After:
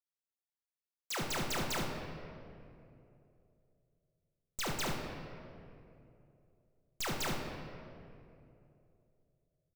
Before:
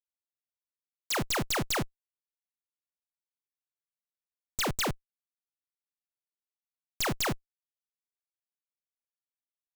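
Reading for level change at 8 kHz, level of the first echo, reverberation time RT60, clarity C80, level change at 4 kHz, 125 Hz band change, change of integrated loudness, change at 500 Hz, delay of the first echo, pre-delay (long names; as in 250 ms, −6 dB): −6.5 dB, −7.0 dB, 2.7 s, 4.0 dB, −6.0 dB, −4.5 dB, −7.5 dB, −5.0 dB, 70 ms, 5 ms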